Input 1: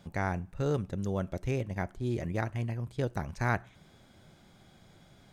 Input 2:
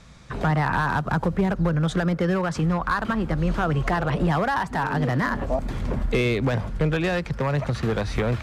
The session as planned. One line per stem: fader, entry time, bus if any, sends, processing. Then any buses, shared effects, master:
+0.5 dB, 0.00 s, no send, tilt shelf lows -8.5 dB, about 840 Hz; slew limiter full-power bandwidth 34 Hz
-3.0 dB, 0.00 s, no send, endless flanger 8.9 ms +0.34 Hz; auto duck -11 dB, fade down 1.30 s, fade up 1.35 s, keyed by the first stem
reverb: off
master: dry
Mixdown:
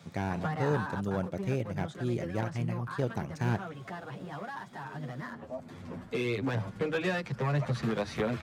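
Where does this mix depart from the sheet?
stem 1: missing tilt shelf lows -8.5 dB, about 840 Hz; master: extra HPF 100 Hz 24 dB/oct

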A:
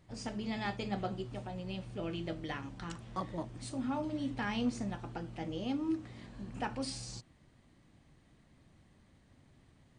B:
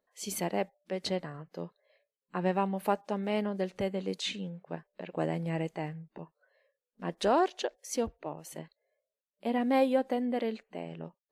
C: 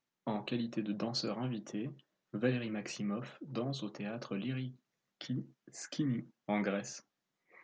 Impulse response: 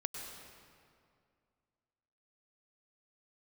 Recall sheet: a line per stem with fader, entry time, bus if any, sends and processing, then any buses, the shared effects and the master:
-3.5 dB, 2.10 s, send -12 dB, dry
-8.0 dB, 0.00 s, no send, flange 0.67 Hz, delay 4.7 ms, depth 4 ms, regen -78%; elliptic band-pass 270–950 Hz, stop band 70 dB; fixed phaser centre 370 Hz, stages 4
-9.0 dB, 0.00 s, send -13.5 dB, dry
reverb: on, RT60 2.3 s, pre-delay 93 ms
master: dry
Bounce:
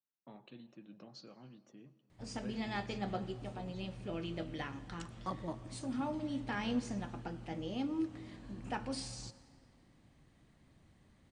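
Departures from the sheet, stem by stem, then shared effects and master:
stem B: muted; stem C -9.0 dB -> -19.0 dB

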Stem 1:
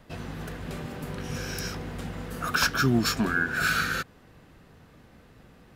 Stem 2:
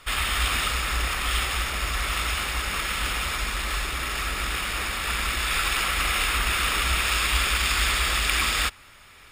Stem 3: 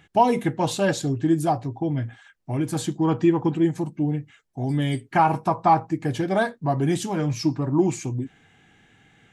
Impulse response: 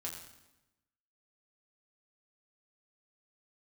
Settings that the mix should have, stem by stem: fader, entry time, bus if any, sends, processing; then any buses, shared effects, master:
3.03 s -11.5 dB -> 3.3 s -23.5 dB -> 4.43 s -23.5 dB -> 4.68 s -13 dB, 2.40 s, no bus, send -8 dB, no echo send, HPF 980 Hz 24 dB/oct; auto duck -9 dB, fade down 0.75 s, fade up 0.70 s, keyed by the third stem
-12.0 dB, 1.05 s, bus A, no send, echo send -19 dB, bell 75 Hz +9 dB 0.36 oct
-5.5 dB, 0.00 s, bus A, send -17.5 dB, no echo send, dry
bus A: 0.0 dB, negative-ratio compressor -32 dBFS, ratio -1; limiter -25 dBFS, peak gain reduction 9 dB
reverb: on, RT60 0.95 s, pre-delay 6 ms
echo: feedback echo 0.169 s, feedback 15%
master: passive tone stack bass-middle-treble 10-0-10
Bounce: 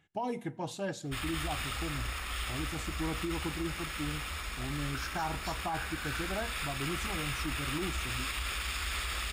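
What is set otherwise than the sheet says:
stem 3 -5.5 dB -> -15.0 dB; master: missing passive tone stack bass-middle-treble 10-0-10

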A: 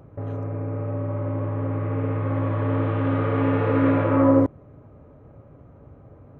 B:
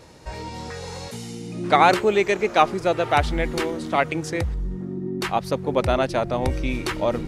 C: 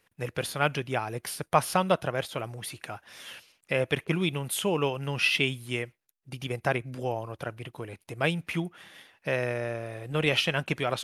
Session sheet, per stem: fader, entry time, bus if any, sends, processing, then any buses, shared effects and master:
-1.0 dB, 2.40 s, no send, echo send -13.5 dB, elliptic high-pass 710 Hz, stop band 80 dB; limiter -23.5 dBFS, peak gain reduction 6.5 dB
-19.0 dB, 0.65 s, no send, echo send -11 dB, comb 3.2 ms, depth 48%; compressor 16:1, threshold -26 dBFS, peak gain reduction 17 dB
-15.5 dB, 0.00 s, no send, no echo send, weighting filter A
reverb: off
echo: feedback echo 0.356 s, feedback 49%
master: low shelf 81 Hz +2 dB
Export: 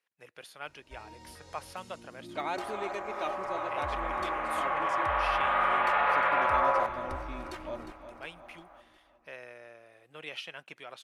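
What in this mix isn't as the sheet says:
stem A -1.0 dB -> +6.5 dB; stem B: missing compressor 16:1, threshold -26 dBFS, peak gain reduction 17 dB

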